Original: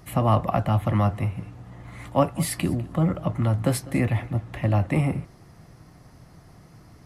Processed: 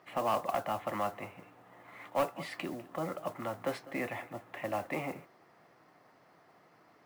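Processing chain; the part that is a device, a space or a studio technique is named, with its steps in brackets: carbon microphone (BPF 450–2900 Hz; soft clip -18.5 dBFS, distortion -13 dB; modulation noise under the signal 21 dB); gain -4 dB

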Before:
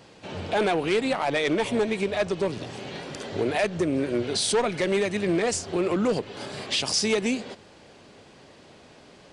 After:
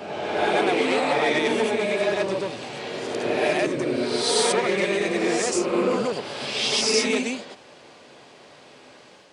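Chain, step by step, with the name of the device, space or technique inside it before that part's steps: ghost voice (reverse; reverb RT60 1.6 s, pre-delay 82 ms, DRR -3 dB; reverse; HPF 430 Hz 6 dB/oct)

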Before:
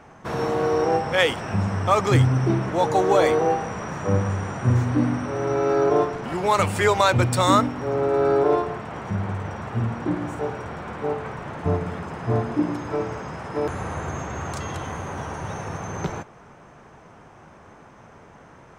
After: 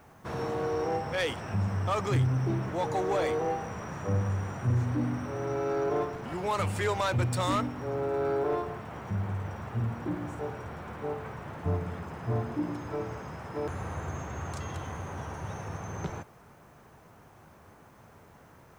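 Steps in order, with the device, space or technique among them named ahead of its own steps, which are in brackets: open-reel tape (soft clip -14 dBFS, distortion -15 dB; bell 87 Hz +5 dB 1.12 oct; white noise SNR 39 dB); gain -8 dB

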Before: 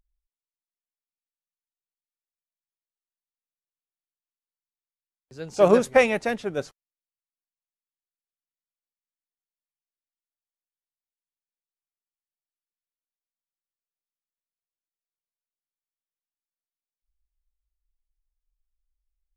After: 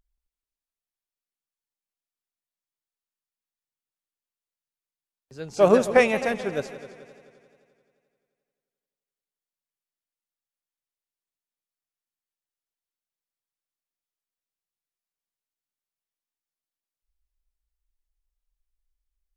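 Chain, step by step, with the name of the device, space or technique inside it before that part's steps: multi-head tape echo (multi-head echo 87 ms, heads second and third, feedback 51%, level -16 dB; wow and flutter)

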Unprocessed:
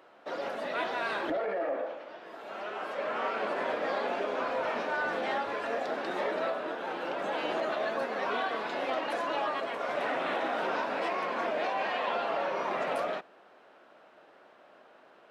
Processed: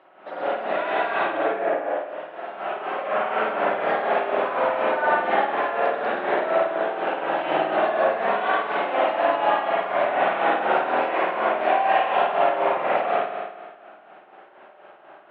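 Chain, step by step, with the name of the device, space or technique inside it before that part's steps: notch 480 Hz, Q 14; combo amplifier with spring reverb and tremolo (spring tank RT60 1.4 s, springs 50 ms, chirp 80 ms, DRR -8.5 dB; tremolo 4.1 Hz, depth 54%; speaker cabinet 78–3500 Hz, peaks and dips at 89 Hz -7 dB, 250 Hz -6 dB, 740 Hz +5 dB); gain +1.5 dB

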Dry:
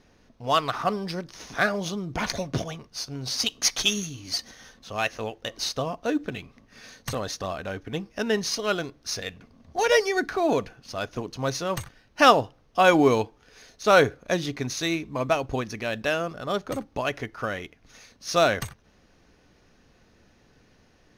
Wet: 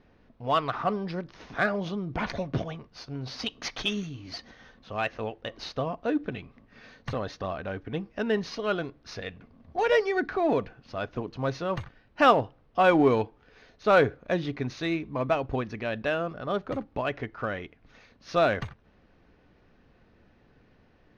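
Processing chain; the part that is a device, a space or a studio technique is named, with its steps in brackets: air absorption 280 m; parallel distortion (in parallel at -11 dB: hard clip -22.5 dBFS, distortion -7 dB); on the sum: gain -2.5 dB

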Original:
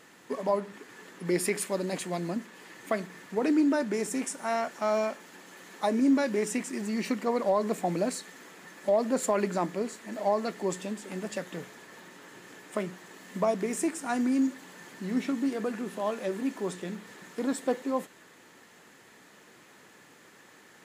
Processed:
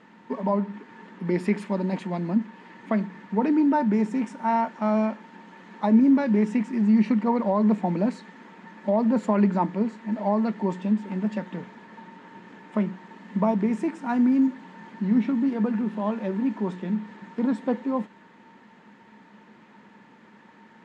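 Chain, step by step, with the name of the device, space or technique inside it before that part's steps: inside a cardboard box (LPF 2900 Hz 12 dB/oct; small resonant body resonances 210/910 Hz, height 15 dB, ringing for 75 ms)

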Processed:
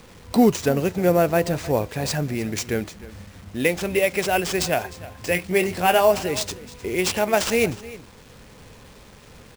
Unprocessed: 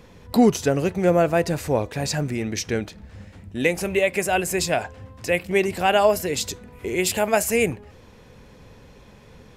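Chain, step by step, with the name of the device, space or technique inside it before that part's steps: 5.25–6.12 doubler 22 ms -8 dB; early 8-bit sampler (sample-rate reducer 13000 Hz, jitter 0%; bit-crush 8-bit); echo 0.307 s -18 dB

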